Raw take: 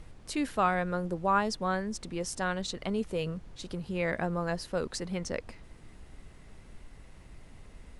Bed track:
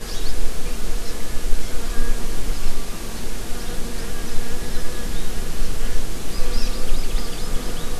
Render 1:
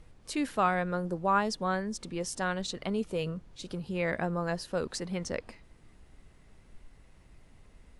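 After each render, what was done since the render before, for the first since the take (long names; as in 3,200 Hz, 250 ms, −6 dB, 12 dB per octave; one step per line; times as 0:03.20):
noise reduction from a noise print 6 dB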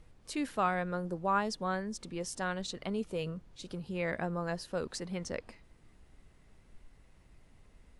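level −3.5 dB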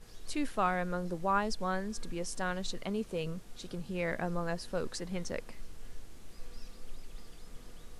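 mix in bed track −25.5 dB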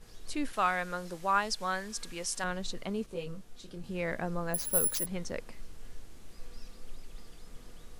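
0:00.53–0:02.44: tilt shelving filter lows −7 dB, about 750 Hz
0:03.06–0:03.84: micro pitch shift up and down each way 27 cents
0:04.54–0:05.06: bad sample-rate conversion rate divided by 4×, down none, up zero stuff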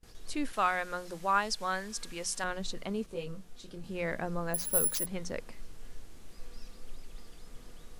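mains-hum notches 60/120/180 Hz
noise gate with hold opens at −41 dBFS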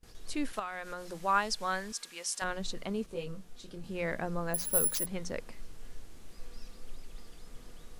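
0:00.59–0:01.17: downward compressor 5 to 1, threshold −35 dBFS
0:01.92–0:02.42: high-pass filter 980 Hz 6 dB per octave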